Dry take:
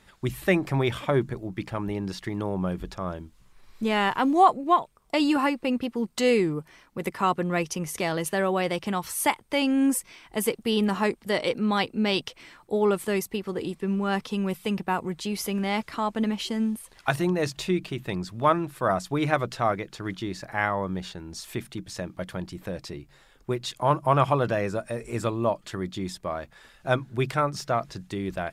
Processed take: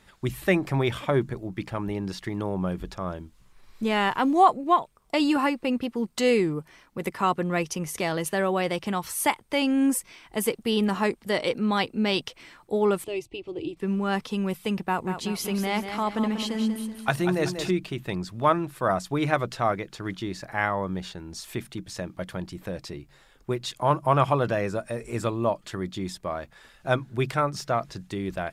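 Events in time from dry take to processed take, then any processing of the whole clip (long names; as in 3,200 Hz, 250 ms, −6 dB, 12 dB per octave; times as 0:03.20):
0:13.04–0:13.77: drawn EQ curve 140 Hz 0 dB, 210 Hz −22 dB, 310 Hz +5 dB, 450 Hz −8 dB, 640 Hz −4 dB, 1,700 Hz −22 dB, 2,600 Hz 0 dB, 4,600 Hz −9 dB, 9,000 Hz −16 dB, 15,000 Hz −30 dB
0:14.81–0:17.71: repeating echo 190 ms, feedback 41%, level −8 dB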